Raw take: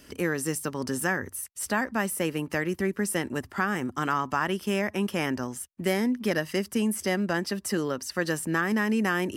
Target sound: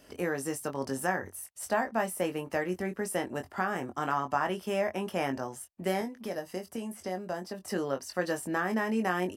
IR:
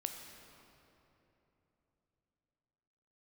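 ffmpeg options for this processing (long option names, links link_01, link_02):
-filter_complex "[0:a]asettb=1/sr,asplit=3[link_01][link_02][link_03];[link_01]atrim=end=6.014[link_04];[link_02]atrim=start=6.01:end=7.68,asetpts=PTS-STARTPTS,afade=type=in:duration=0.004:curve=qsin,afade=type=out:start_time=1.666:duration=0.004:curve=qsin,acrossover=split=1300|4800[link_05][link_06][link_07];[link_05]acompressor=threshold=-30dB:ratio=4[link_08];[link_06]acompressor=threshold=-46dB:ratio=4[link_09];[link_07]acompressor=threshold=-43dB:ratio=4[link_10];[link_08][link_09][link_10]amix=inputs=3:normalize=0[link_11];[link_03]atrim=start=7.676[link_12];[link_04][link_11]acrossfade=duration=0.004:curve1=hsin:curve2=qsin[link_13];[link_13][link_12]acrossfade=duration=0.004:curve1=qsin:curve2=hsin,equalizer=frequency=690:width=1.5:gain=11,asplit=2[link_14][link_15];[link_15]adelay=22,volume=-6.5dB[link_16];[link_14][link_16]amix=inputs=2:normalize=0,volume=-7.5dB"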